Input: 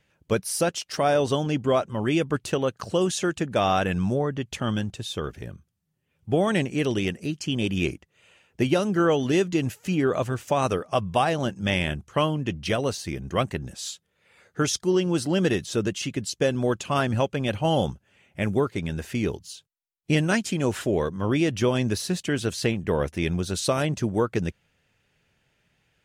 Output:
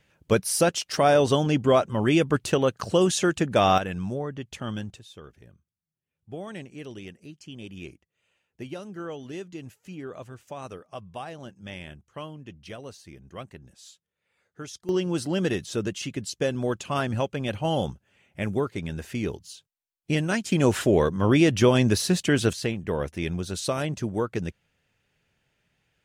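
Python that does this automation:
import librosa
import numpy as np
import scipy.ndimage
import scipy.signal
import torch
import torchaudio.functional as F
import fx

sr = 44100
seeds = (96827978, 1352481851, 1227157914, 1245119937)

y = fx.gain(x, sr, db=fx.steps((0.0, 2.5), (3.78, -6.0), (4.99, -15.0), (14.89, -3.0), (20.52, 4.0), (22.53, -3.5)))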